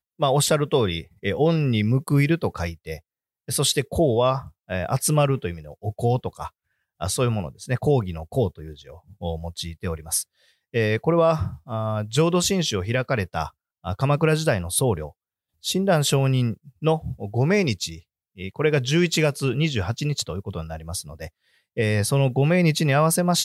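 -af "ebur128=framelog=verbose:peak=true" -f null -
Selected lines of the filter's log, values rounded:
Integrated loudness:
  I:         -23.0 LUFS
  Threshold: -33.5 LUFS
Loudness range:
  LRA:         3.8 LU
  Threshold: -44.0 LUFS
  LRA low:   -26.6 LUFS
  LRA high:  -22.8 LUFS
True peak:
  Peak:       -9.0 dBFS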